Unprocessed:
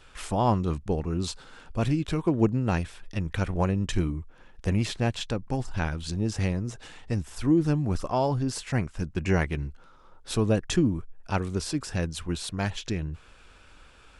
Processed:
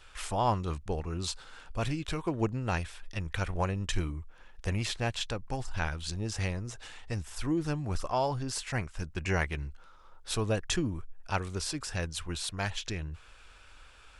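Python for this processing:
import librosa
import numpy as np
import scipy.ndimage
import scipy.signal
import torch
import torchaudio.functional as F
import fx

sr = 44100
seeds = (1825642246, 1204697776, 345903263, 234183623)

y = fx.peak_eq(x, sr, hz=220.0, db=-10.0, octaves=2.4)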